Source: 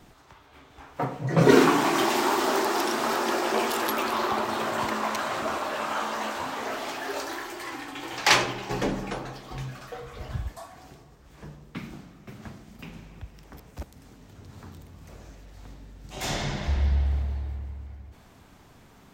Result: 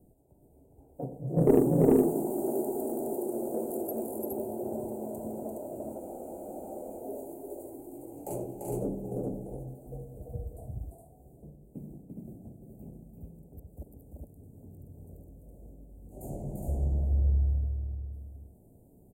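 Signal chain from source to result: inverse Chebyshev band-stop 1.1–5.7 kHz, stop band 40 dB; Chebyshev shaper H 2 -15 dB, 7 -33 dB, 8 -44 dB, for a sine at -5.5 dBFS; on a send: multi-tap echo 343/416 ms -3.5/-3 dB; on the sum: spectral freeze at 6.02 s, 0.98 s; trim -4.5 dB

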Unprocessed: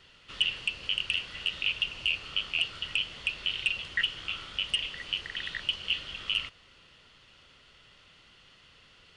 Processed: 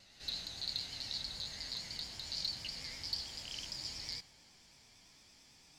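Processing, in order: gliding tape speed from 143% -> 174%; harmonic-percussive split percussive -17 dB; vibrato 8.9 Hz 74 cents

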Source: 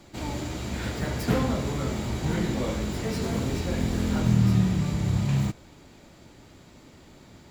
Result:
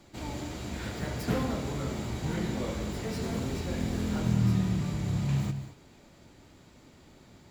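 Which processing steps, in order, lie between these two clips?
gated-style reverb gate 240 ms rising, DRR 10.5 dB; trim -5 dB

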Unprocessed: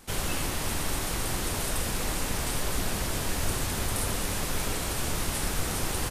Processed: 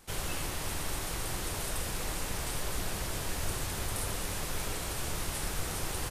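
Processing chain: peaking EQ 240 Hz -5.5 dB 0.45 oct; trim -5 dB

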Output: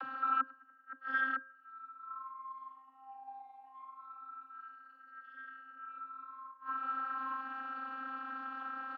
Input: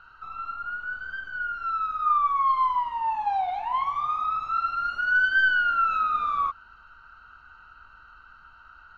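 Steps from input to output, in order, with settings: dynamic bell 1.3 kHz, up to +6 dB, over -40 dBFS, Q 5.7; Schroeder reverb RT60 0.53 s, combs from 25 ms, DRR 6 dB; upward compressor, threshold -36 dBFS; treble shelf 2 kHz -10.5 dB; echo from a far wall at 150 m, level -24 dB; inverted gate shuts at -25 dBFS, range -34 dB; vocoder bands 32, saw 265 Hz; de-hum 177.9 Hz, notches 11; trim +7 dB

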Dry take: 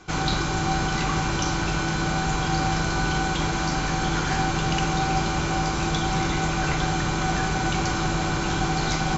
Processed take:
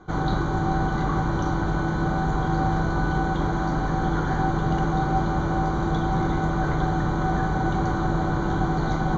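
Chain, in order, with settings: boxcar filter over 17 samples; de-hum 77.23 Hz, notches 37; trim +2.5 dB

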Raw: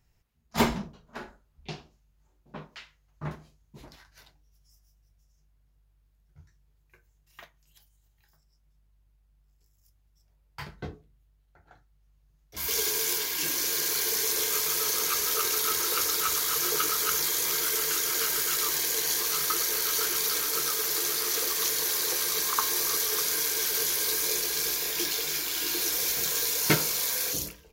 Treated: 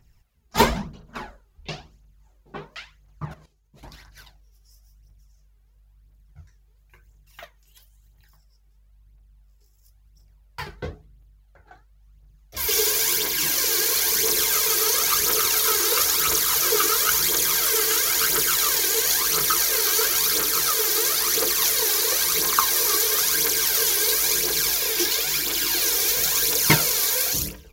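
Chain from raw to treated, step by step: phaser 0.98 Hz, delay 2.7 ms, feedback 55%; 3.25–3.83 s: level held to a coarse grid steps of 14 dB; trim +5 dB

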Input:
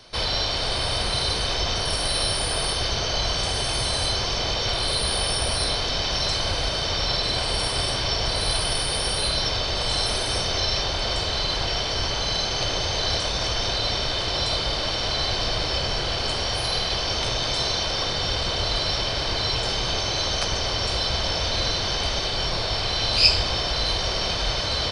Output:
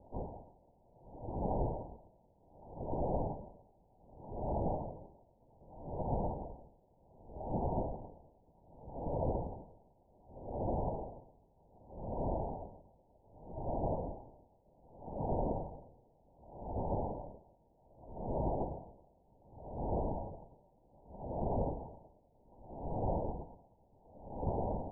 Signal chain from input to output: LPC vocoder at 8 kHz whisper; Chebyshev low-pass 950 Hz, order 8; logarithmic tremolo 0.65 Hz, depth 35 dB; trim -4 dB

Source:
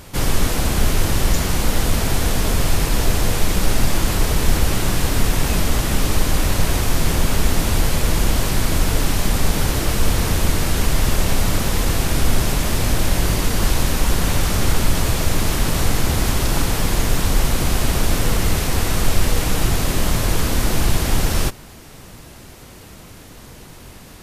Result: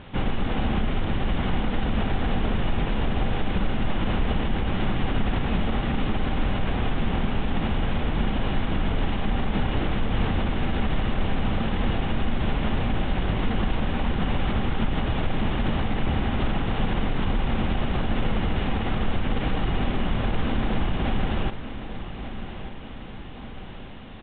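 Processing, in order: CVSD coder 32 kbps; peak limiter -12.5 dBFS, peak gain reduction 9 dB; small resonant body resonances 220/780/2900 Hz, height 7 dB; resampled via 8 kHz; feedback delay 1189 ms, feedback 53%, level -11.5 dB; trim -3.5 dB

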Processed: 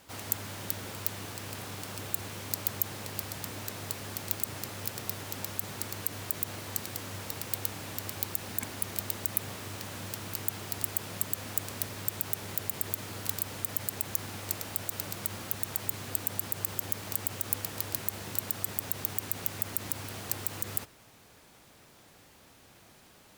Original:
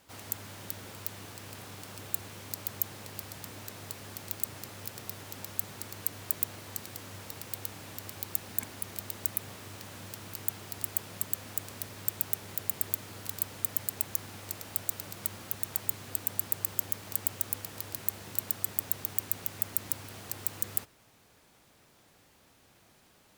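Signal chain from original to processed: peak limiter -12.5 dBFS, peak gain reduction 8.5 dB; trim +5 dB

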